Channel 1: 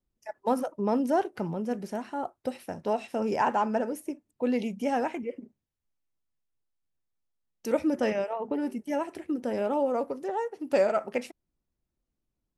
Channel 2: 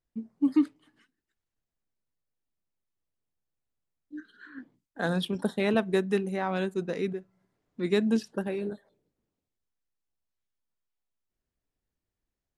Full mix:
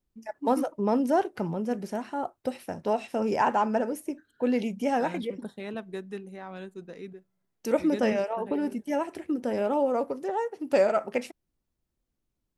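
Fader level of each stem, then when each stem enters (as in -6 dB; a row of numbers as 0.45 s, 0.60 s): +1.5 dB, -11.0 dB; 0.00 s, 0.00 s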